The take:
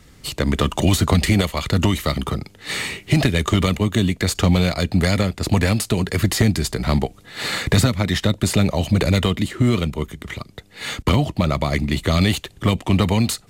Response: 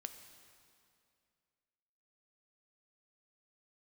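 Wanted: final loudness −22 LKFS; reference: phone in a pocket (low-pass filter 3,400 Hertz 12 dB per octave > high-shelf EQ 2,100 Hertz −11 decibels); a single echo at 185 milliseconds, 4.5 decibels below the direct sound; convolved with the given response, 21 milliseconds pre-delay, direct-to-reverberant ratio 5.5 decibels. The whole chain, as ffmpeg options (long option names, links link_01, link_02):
-filter_complex "[0:a]aecho=1:1:185:0.596,asplit=2[link_01][link_02];[1:a]atrim=start_sample=2205,adelay=21[link_03];[link_02][link_03]afir=irnorm=-1:irlink=0,volume=-1.5dB[link_04];[link_01][link_04]amix=inputs=2:normalize=0,lowpass=3400,highshelf=frequency=2100:gain=-11,volume=-4dB"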